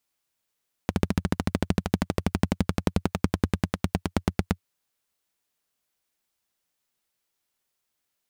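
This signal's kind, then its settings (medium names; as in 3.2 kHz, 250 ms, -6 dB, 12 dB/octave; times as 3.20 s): single-cylinder engine model, changing speed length 3.72 s, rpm 1700, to 1000, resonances 90/180 Hz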